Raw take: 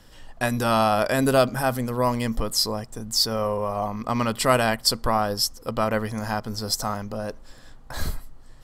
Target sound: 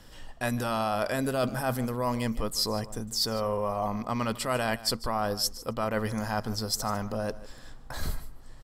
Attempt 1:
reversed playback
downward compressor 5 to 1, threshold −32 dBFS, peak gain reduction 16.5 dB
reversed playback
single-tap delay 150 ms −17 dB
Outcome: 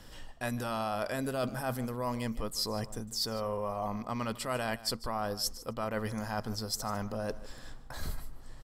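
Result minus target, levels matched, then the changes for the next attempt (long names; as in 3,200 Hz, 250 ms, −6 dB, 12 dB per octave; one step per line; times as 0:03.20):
downward compressor: peak gain reduction +5 dB
change: downward compressor 5 to 1, threshold −25.5 dBFS, peak gain reduction 11.5 dB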